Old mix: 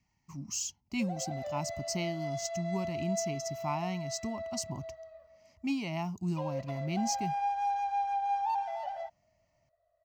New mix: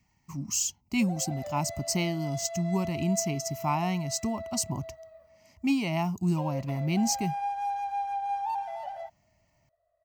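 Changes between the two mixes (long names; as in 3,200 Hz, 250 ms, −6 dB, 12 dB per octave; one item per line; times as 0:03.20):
speech +6.5 dB
master: add high shelf with overshoot 7,500 Hz +6 dB, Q 1.5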